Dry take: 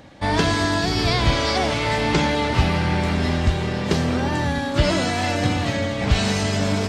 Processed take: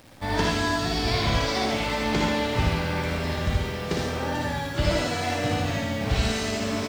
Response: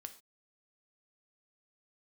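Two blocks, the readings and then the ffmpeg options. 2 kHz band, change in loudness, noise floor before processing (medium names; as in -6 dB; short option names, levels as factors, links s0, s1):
-4.0 dB, -5.0 dB, -26 dBFS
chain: -filter_complex "[0:a]acrusher=bits=8:dc=4:mix=0:aa=0.000001,aecho=1:1:58.31|90.38:0.631|0.282,asplit=2[s0][s1];[1:a]atrim=start_sample=2205,asetrate=79380,aresample=44100,adelay=77[s2];[s1][s2]afir=irnorm=-1:irlink=0,volume=2.24[s3];[s0][s3]amix=inputs=2:normalize=0,volume=0.422"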